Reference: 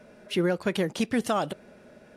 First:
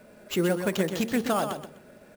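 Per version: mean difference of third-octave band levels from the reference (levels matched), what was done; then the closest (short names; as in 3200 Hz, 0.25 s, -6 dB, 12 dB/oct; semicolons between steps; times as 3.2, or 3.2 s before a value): 5.0 dB: de-hum 76.76 Hz, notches 14; sample-rate reducer 10000 Hz, jitter 0%; on a send: feedback echo 0.126 s, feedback 20%, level -7.5 dB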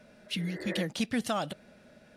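3.5 dB: spectral repair 0.39–0.78, 280–2100 Hz both; fifteen-band EQ 400 Hz -8 dB, 1000 Hz -4 dB, 4000 Hz +4 dB; gain -2.5 dB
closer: second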